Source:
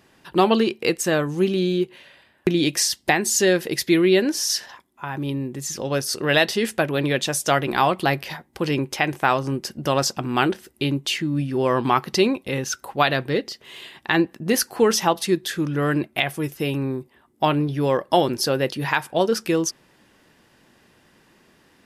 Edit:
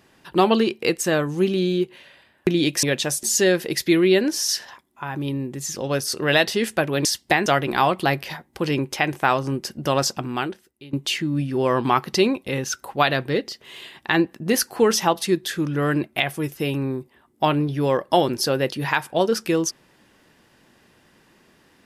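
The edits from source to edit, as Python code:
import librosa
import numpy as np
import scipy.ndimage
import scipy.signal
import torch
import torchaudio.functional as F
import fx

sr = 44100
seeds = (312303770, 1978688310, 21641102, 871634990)

y = fx.edit(x, sr, fx.swap(start_s=2.83, length_s=0.41, other_s=7.06, other_length_s=0.4),
    fx.fade_out_to(start_s=10.16, length_s=0.77, curve='qua', floor_db=-20.0), tone=tone)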